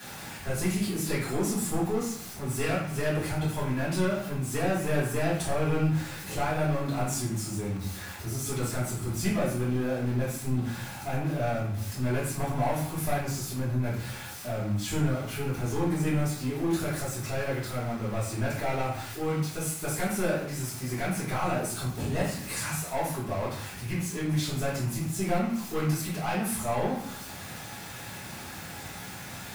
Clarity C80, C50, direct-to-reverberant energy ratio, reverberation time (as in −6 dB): 7.0 dB, 3.0 dB, −11.0 dB, 0.65 s